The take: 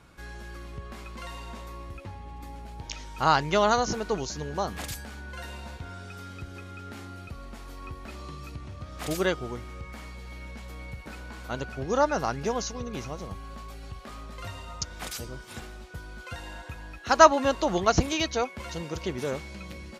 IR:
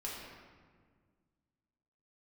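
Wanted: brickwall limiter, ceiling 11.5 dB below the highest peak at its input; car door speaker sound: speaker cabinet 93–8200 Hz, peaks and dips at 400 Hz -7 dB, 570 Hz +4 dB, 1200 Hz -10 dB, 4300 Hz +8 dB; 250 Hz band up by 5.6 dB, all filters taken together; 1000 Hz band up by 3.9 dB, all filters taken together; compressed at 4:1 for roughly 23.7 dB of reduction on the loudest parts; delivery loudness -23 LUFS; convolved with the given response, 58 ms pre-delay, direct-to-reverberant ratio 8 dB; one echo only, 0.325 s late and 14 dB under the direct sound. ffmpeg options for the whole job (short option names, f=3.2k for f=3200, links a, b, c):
-filter_complex "[0:a]equalizer=f=250:t=o:g=8,equalizer=f=1k:t=o:g=8,acompressor=threshold=-34dB:ratio=4,alimiter=level_in=5dB:limit=-24dB:level=0:latency=1,volume=-5dB,aecho=1:1:325:0.2,asplit=2[a][b];[1:a]atrim=start_sample=2205,adelay=58[c];[b][c]afir=irnorm=-1:irlink=0,volume=-9dB[d];[a][d]amix=inputs=2:normalize=0,highpass=93,equalizer=f=400:t=q:w=4:g=-7,equalizer=f=570:t=q:w=4:g=4,equalizer=f=1.2k:t=q:w=4:g=-10,equalizer=f=4.3k:t=q:w=4:g=8,lowpass=f=8.2k:w=0.5412,lowpass=f=8.2k:w=1.3066,volume=17.5dB"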